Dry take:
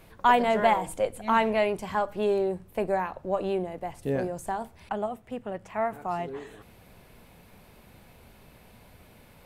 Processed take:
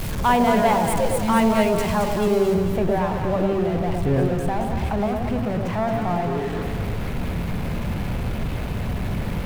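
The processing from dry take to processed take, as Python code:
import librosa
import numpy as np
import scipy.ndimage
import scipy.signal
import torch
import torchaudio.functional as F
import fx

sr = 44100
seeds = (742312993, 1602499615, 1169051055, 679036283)

y = x + 0.5 * 10.0 ** (-28.0 / 20.0) * np.sign(x)
y = fx.bass_treble(y, sr, bass_db=10, treble_db=fx.steps((0.0, 2.0), (2.54, -12.0)))
y = fx.echo_alternate(y, sr, ms=111, hz=820.0, feedback_pct=70, wet_db=-2.5)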